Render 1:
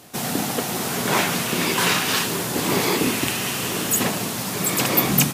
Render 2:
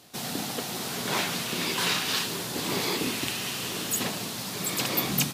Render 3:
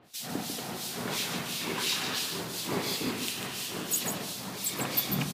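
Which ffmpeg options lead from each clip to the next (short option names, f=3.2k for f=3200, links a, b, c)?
-af "equalizer=f=4.1k:w=1.3:g=6.5,volume=-9dB"
-filter_complex "[0:a]acrossover=split=2400[a][b];[a]aeval=exprs='val(0)*(1-1/2+1/2*cos(2*PI*2.9*n/s))':c=same[c];[b]aeval=exprs='val(0)*(1-1/2-1/2*cos(2*PI*2.9*n/s))':c=same[d];[c][d]amix=inputs=2:normalize=0,aecho=1:1:145:0.473"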